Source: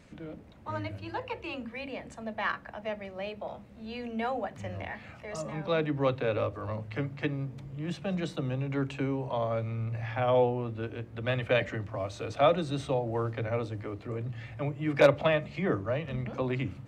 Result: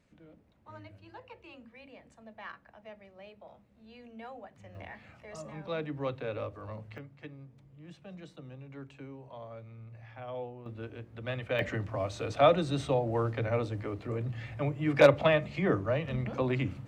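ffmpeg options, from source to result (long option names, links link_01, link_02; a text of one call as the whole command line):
ffmpeg -i in.wav -af "asetnsamples=nb_out_samples=441:pad=0,asendcmd='4.75 volume volume -7dB;6.98 volume volume -15dB;10.66 volume volume -6dB;11.59 volume volume 1dB',volume=-13.5dB" out.wav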